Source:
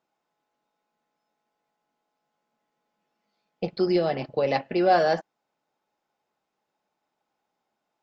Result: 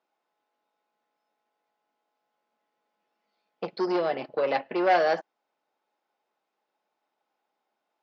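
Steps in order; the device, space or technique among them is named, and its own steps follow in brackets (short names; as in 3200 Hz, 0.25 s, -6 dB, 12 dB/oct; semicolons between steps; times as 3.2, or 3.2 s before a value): public-address speaker with an overloaded transformer (core saturation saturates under 970 Hz; BPF 300–5000 Hz); 3.92–4.84 LPF 5100 Hz 12 dB/oct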